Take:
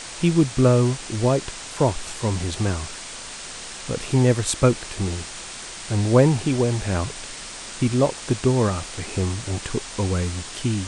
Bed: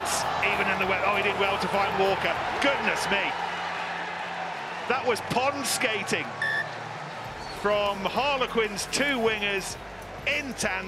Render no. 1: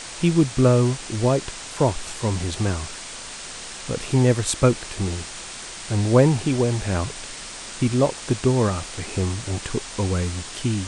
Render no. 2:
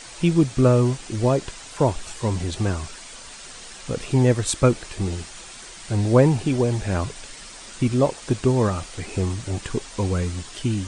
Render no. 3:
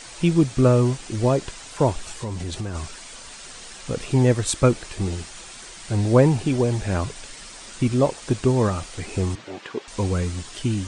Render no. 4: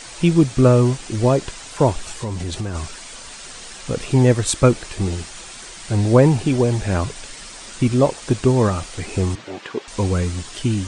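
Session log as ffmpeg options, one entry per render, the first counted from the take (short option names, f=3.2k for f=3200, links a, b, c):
-af anull
-af "afftdn=nr=7:nf=-36"
-filter_complex "[0:a]asplit=3[a][b][c];[a]afade=t=out:st=2.07:d=0.02[d];[b]acompressor=threshold=-25dB:ratio=6:attack=3.2:release=140:knee=1:detection=peak,afade=t=in:st=2.07:d=0.02,afade=t=out:st=2.74:d=0.02[e];[c]afade=t=in:st=2.74:d=0.02[f];[d][e][f]amix=inputs=3:normalize=0,asettb=1/sr,asplit=3[g][h][i];[g]atrim=end=9.354[j];[h]atrim=start=9.35:end=9.88,asetpts=PTS-STARTPTS,afade=t=in:d=0.004:c=qsin,afade=t=out:st=0.526:d=0.004:c=qsin,highpass=340,lowpass=3.5k[k];[i]atrim=start=9.876[l];[j][k]acrossfade=d=0.004:c1=hsin:c2=qsin[m];[m][l]acrossfade=d=0.004:c1=qsin:c2=hsin"
-af "volume=3.5dB,alimiter=limit=-2dB:level=0:latency=1"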